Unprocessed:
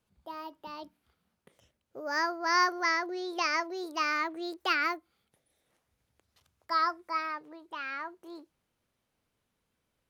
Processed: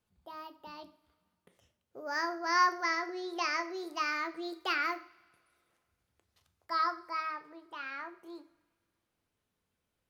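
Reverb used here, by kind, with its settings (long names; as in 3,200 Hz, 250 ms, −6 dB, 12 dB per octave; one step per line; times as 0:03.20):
coupled-rooms reverb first 0.45 s, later 2 s, from −22 dB, DRR 8 dB
level −4 dB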